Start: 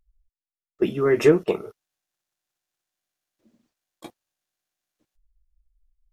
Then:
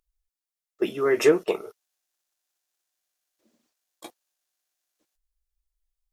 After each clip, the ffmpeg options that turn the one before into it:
-af "bass=f=250:g=-14,treble=f=4k:g=5"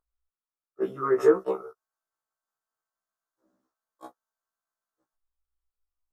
-af "highshelf=f=1.8k:t=q:w=3:g=-11,afftfilt=real='re*1.73*eq(mod(b,3),0)':imag='im*1.73*eq(mod(b,3),0)':win_size=2048:overlap=0.75,volume=-1dB"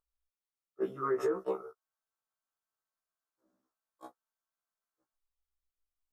-af "alimiter=limit=-17.5dB:level=0:latency=1:release=85,volume=-5dB"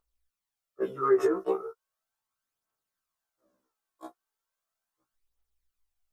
-af "aphaser=in_gain=1:out_gain=1:delay=3:decay=0.46:speed=0.37:type=triangular,volume=4dB"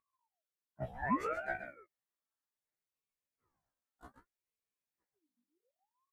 -af "aecho=1:1:131:0.335,aeval=exprs='val(0)*sin(2*PI*680*n/s+680*0.65/0.65*sin(2*PI*0.65*n/s))':c=same,volume=-7.5dB"

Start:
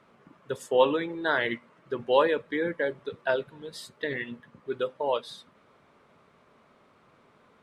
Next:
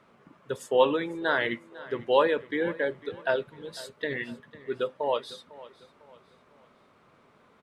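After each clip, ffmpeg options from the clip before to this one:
-af "aecho=1:1:501|1002|1503:0.112|0.0426|0.0162"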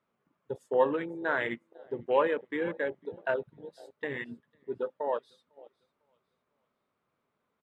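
-af "afwtdn=0.02,volume=-3.5dB"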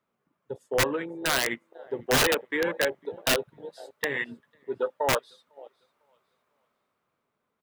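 -filter_complex "[0:a]acrossover=split=500[a][b];[b]dynaudnorm=f=230:g=11:m=8.5dB[c];[a][c]amix=inputs=2:normalize=0,aeval=exprs='(mod(6.31*val(0)+1,2)-1)/6.31':c=same"

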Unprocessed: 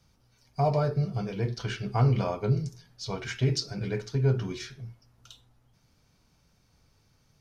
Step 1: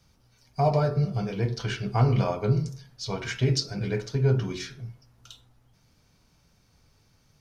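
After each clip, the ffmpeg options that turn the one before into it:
-af "bandreject=f=45.17:t=h:w=4,bandreject=f=90.34:t=h:w=4,bandreject=f=135.51:t=h:w=4,bandreject=f=180.68:t=h:w=4,bandreject=f=225.85:t=h:w=4,bandreject=f=271.02:t=h:w=4,bandreject=f=316.19:t=h:w=4,bandreject=f=361.36:t=h:w=4,bandreject=f=406.53:t=h:w=4,bandreject=f=451.7:t=h:w=4,bandreject=f=496.87:t=h:w=4,bandreject=f=542.04:t=h:w=4,bandreject=f=587.21:t=h:w=4,bandreject=f=632.38:t=h:w=4,bandreject=f=677.55:t=h:w=4,bandreject=f=722.72:t=h:w=4,bandreject=f=767.89:t=h:w=4,bandreject=f=813.06:t=h:w=4,bandreject=f=858.23:t=h:w=4,bandreject=f=903.4:t=h:w=4,bandreject=f=948.57:t=h:w=4,bandreject=f=993.74:t=h:w=4,bandreject=f=1.03891k:t=h:w=4,bandreject=f=1.08408k:t=h:w=4,bandreject=f=1.12925k:t=h:w=4,bandreject=f=1.17442k:t=h:w=4,bandreject=f=1.21959k:t=h:w=4,bandreject=f=1.26476k:t=h:w=4,bandreject=f=1.30993k:t=h:w=4,bandreject=f=1.3551k:t=h:w=4,bandreject=f=1.40027k:t=h:w=4,bandreject=f=1.44544k:t=h:w=4,bandreject=f=1.49061k:t=h:w=4,volume=3dB"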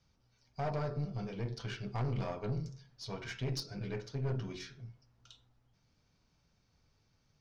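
-af "lowpass=f=6.5k:w=0.5412,lowpass=f=6.5k:w=1.3066,aeval=exprs='(tanh(12.6*val(0)+0.4)-tanh(0.4))/12.6':c=same,volume=-8.5dB"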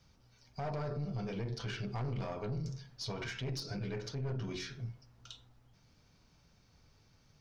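-af "alimiter=level_in=14dB:limit=-24dB:level=0:latency=1:release=82,volume=-14dB,volume=7dB"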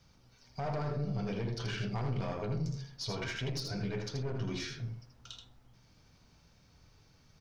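-af "aecho=1:1:80:0.531,volume=2dB"

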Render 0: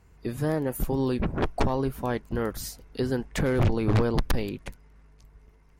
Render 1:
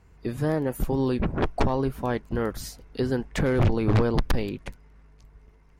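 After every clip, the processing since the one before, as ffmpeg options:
-af "highshelf=f=8.2k:g=-8,volume=1.5dB"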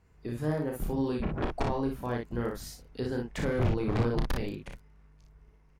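-af "aecho=1:1:33|59:0.562|0.631,volume=-8dB"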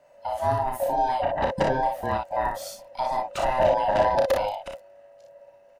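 -af "afftfilt=real='real(if(lt(b,1008),b+24*(1-2*mod(floor(b/24),2)),b),0)':imag='imag(if(lt(b,1008),b+24*(1-2*mod(floor(b/24),2)),b),0)':win_size=2048:overlap=0.75,volume=6dB"

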